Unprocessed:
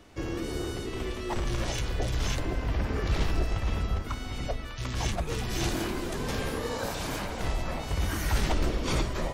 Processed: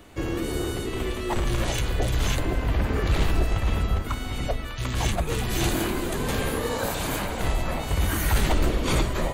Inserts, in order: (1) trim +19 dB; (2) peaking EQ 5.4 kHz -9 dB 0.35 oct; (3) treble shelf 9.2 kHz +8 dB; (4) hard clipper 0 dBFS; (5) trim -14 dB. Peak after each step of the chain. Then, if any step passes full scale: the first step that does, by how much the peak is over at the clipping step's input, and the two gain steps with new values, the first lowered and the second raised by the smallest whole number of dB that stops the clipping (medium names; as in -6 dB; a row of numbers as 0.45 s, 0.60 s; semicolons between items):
+4.0 dBFS, +3.5 dBFS, +4.0 dBFS, 0.0 dBFS, -14.0 dBFS; step 1, 4.0 dB; step 1 +15 dB, step 5 -10 dB